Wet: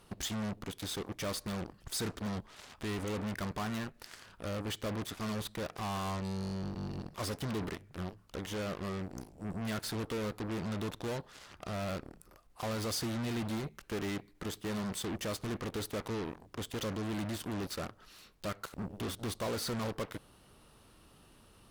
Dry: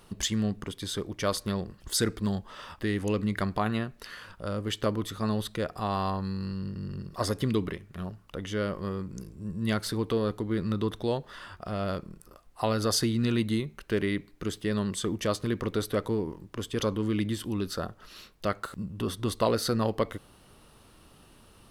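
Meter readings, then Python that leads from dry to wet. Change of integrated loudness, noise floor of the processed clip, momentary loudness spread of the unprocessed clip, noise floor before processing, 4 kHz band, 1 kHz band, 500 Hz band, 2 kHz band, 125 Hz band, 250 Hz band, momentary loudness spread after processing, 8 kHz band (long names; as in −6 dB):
−7.5 dB, −61 dBFS, 11 LU, −57 dBFS, −6.0 dB, −7.0 dB, −8.5 dB, −5.0 dB, −7.5 dB, −8.0 dB, 7 LU, −6.0 dB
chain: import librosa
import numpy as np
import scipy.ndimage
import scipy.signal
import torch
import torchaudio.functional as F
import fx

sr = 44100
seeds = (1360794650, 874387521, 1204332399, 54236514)

y = 10.0 ** (-28.5 / 20.0) * np.tanh(x / 10.0 ** (-28.5 / 20.0))
y = fx.cheby_harmonics(y, sr, harmonics=(7,), levels_db=(-11,), full_scale_db=-28.5)
y = y * 10.0 ** (-3.5 / 20.0)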